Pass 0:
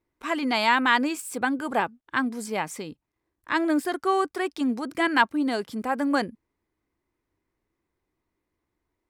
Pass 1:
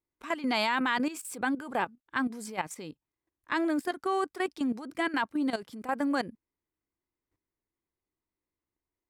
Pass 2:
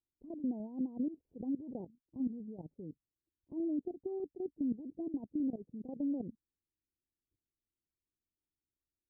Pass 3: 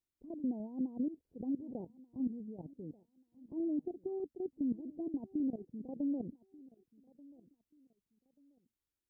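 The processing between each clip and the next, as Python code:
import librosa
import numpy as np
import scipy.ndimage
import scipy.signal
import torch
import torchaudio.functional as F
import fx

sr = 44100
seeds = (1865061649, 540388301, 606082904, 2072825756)

y1 = fx.level_steps(x, sr, step_db=13)
y1 = y1 * 10.0 ** (-1.5 / 20.0)
y2 = fx.tremolo_shape(y1, sr, shape='saw_down', hz=5.0, depth_pct=35)
y2 = fx.level_steps(y2, sr, step_db=11)
y2 = scipy.ndimage.gaussian_filter1d(y2, 21.0, mode='constant')
y2 = y2 * 10.0 ** (3.5 / 20.0)
y3 = fx.echo_feedback(y2, sr, ms=1185, feedback_pct=28, wet_db=-22)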